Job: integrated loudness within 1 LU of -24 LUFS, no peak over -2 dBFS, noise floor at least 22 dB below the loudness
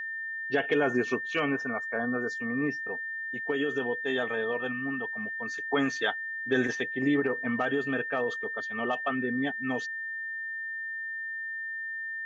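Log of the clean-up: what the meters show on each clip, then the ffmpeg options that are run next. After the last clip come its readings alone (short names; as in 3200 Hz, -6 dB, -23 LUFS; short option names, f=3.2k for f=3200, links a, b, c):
steady tone 1800 Hz; tone level -33 dBFS; loudness -30.0 LUFS; peak -13.0 dBFS; loudness target -24.0 LUFS
-> -af "bandreject=f=1.8k:w=30"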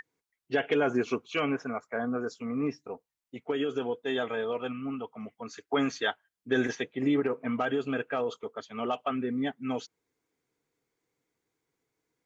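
steady tone none; loudness -31.5 LUFS; peak -14.0 dBFS; loudness target -24.0 LUFS
-> -af "volume=7.5dB"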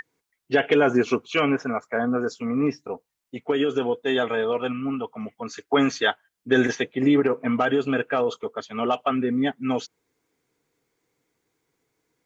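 loudness -24.0 LUFS; peak -6.5 dBFS; noise floor -81 dBFS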